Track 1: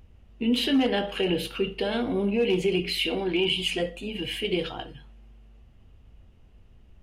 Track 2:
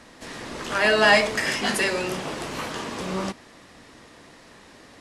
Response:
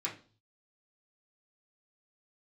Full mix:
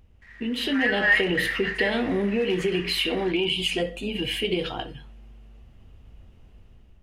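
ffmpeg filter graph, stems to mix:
-filter_complex "[0:a]acompressor=threshold=-25dB:ratio=6,volume=-3dB[a];[1:a]acrusher=bits=5:mix=0:aa=0.5,bandpass=f=1.9k:t=q:w=7.2:csg=0,volume=-4dB[b];[a][b]amix=inputs=2:normalize=0,dynaudnorm=f=240:g=5:m=7dB"

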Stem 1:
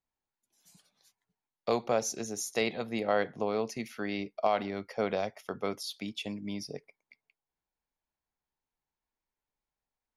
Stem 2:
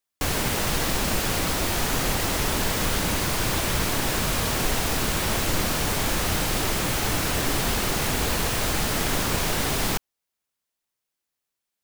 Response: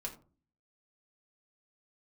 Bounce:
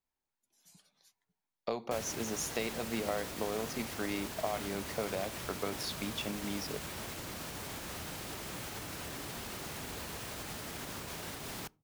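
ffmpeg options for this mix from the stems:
-filter_complex "[0:a]acompressor=threshold=-31dB:ratio=6,volume=-1.5dB,asplit=2[a][b];[b]volume=-13dB[c];[1:a]highpass=66,alimiter=limit=-18.5dB:level=0:latency=1:release=92,adelay=1700,volume=-14.5dB,asplit=2[d][e];[e]volume=-17.5dB[f];[2:a]atrim=start_sample=2205[g];[c][f]amix=inputs=2:normalize=0[h];[h][g]afir=irnorm=-1:irlink=0[i];[a][d][i]amix=inputs=3:normalize=0"

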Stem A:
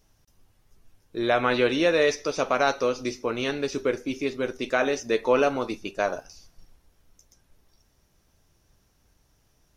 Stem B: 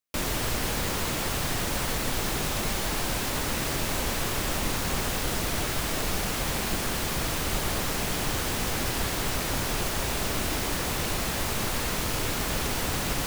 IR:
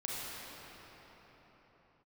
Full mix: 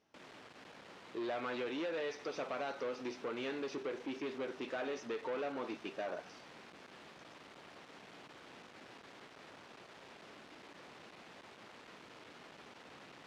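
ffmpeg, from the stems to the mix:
-filter_complex "[0:a]acompressor=threshold=-25dB:ratio=6,volume=-4dB[a];[1:a]aeval=exprs='(tanh(50.1*val(0)+0.7)-tanh(0.7))/50.1':c=same,volume=-14.5dB[b];[a][b]amix=inputs=2:normalize=0,asoftclip=type=tanh:threshold=-34.5dB,highpass=230,lowpass=3.4k"

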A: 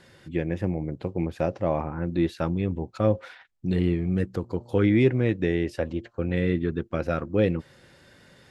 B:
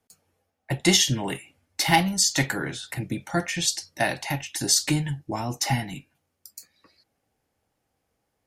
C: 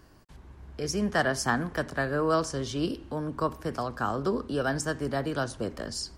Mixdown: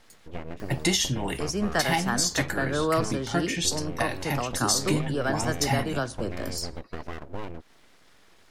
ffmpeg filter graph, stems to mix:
-filter_complex "[0:a]acompressor=threshold=-29dB:ratio=5,aeval=exprs='abs(val(0))':c=same,volume=-1.5dB[a];[1:a]volume=-1dB[b];[2:a]acompressor=mode=upward:threshold=-36dB:ratio=2.5,adelay=600,volume=0.5dB[c];[a][b][c]amix=inputs=3:normalize=0,alimiter=limit=-12.5dB:level=0:latency=1:release=325"

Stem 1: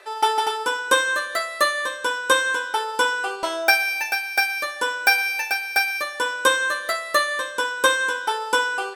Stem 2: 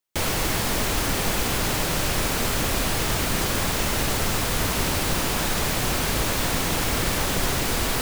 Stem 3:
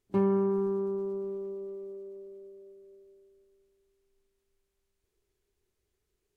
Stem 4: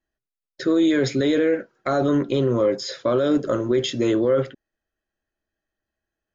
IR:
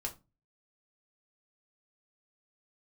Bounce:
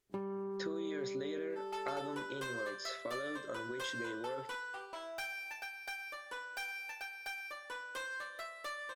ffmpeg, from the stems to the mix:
-filter_complex "[0:a]highshelf=f=2.7k:g=-8.5,asoftclip=type=tanh:threshold=-22.5dB,adelay=1500,volume=-14.5dB[a];[2:a]acompressor=threshold=-34dB:ratio=5,volume=-0.5dB[b];[3:a]acompressor=threshold=-27dB:ratio=6,volume=-9.5dB[c];[a][b][c]amix=inputs=3:normalize=0,lowshelf=f=390:g=-8"

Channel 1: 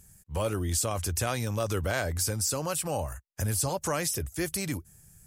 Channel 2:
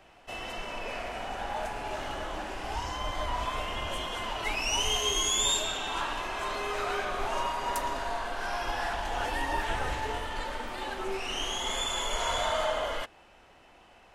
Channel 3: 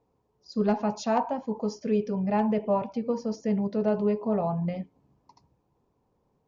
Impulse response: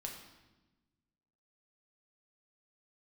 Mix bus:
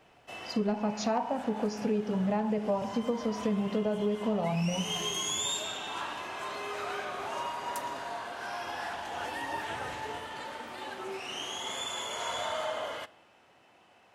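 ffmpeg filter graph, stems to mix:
-filter_complex "[0:a]adelay=600,volume=-18dB[a];[1:a]highpass=f=96:w=0.5412,highpass=f=96:w=1.3066,volume=-5.5dB,asplit=2[b][c];[c]volume=-12dB[d];[2:a]volume=2.5dB,asplit=3[e][f][g];[f]volume=-7dB[h];[g]apad=whole_len=258623[i];[a][i]sidechaincompress=threshold=-38dB:ratio=8:attack=16:release=214[j];[3:a]atrim=start_sample=2205[k];[d][h]amix=inputs=2:normalize=0[l];[l][k]afir=irnorm=-1:irlink=0[m];[j][b][e][m]amix=inputs=4:normalize=0,acompressor=threshold=-27dB:ratio=5"

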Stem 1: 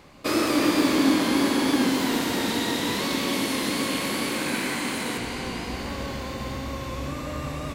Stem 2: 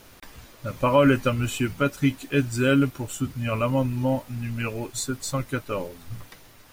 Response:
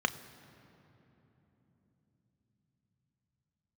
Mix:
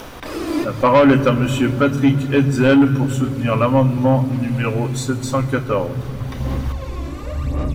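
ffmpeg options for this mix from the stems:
-filter_complex "[0:a]tiltshelf=f=970:g=3.5,bandreject=f=50:t=h:w=6,bandreject=f=100:t=h:w=6,bandreject=f=150:t=h:w=6,aphaser=in_gain=1:out_gain=1:delay=3:decay=0.63:speed=0.92:type=sinusoidal,volume=-2dB[a];[1:a]acompressor=mode=upward:threshold=-34dB:ratio=2.5,volume=3dB,asplit=3[b][c][d];[c]volume=-3.5dB[e];[d]apad=whole_len=341515[f];[a][f]sidechaincompress=threshold=-37dB:ratio=10:attack=12:release=480[g];[2:a]atrim=start_sample=2205[h];[e][h]afir=irnorm=-1:irlink=0[i];[g][b][i]amix=inputs=3:normalize=0,lowshelf=f=90:g=11.5,asoftclip=type=tanh:threshold=-6dB"

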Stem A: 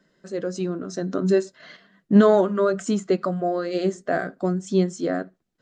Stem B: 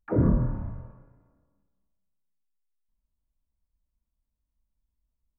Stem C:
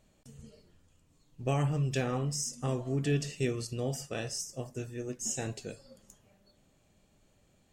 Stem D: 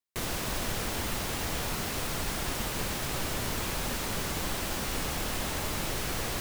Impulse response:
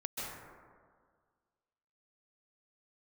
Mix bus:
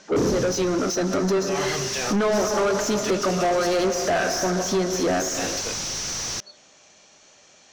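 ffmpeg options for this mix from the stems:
-filter_complex "[0:a]dynaudnorm=f=400:g=3:m=11.5dB,volume=-6dB,asplit=2[a][b];[b]volume=-16dB[c];[1:a]lowpass=f=430:t=q:w=4.9,volume=-7.5dB[d];[2:a]lowshelf=f=430:g=-9.5,alimiter=level_in=5.5dB:limit=-24dB:level=0:latency=1,volume=-5.5dB,volume=1.5dB[e];[3:a]bass=f=250:g=12,treble=f=4k:g=10,volume=-15dB,afade=t=in:st=1.57:d=0.36:silence=0.473151[f];[a][e][f]amix=inputs=3:normalize=0,lowpass=f=5.9k:t=q:w=7.3,acompressor=threshold=-28dB:ratio=6,volume=0dB[g];[4:a]atrim=start_sample=2205[h];[c][h]afir=irnorm=-1:irlink=0[i];[d][g][i]amix=inputs=3:normalize=0,asplit=2[j][k];[k]highpass=f=720:p=1,volume=26dB,asoftclip=type=tanh:threshold=-13.5dB[l];[j][l]amix=inputs=2:normalize=0,lowpass=f=2.5k:p=1,volume=-6dB"

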